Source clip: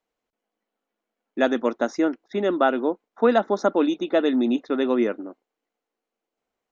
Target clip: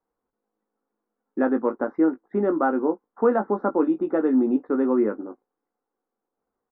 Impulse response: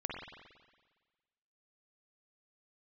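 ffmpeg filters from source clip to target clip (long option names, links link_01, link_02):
-filter_complex "[0:a]lowpass=frequency=1400:width=0.5412,lowpass=frequency=1400:width=1.3066,equalizer=frequency=640:width_type=o:width=0.22:gain=-10.5,asplit=2[link_01][link_02];[link_02]alimiter=limit=-19.5dB:level=0:latency=1:release=247,volume=-1.5dB[link_03];[link_01][link_03]amix=inputs=2:normalize=0,asplit=2[link_04][link_05];[link_05]adelay=19,volume=-7dB[link_06];[link_04][link_06]amix=inputs=2:normalize=0,volume=-3dB"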